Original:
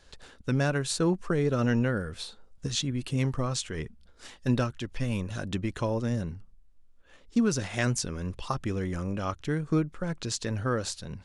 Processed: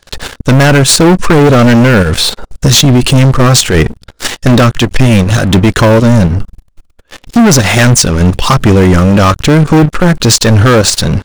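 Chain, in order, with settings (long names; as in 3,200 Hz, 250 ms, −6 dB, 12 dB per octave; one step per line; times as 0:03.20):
leveller curve on the samples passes 5
output level in coarse steps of 9 dB
boost into a limiter +18.5 dB
level −1 dB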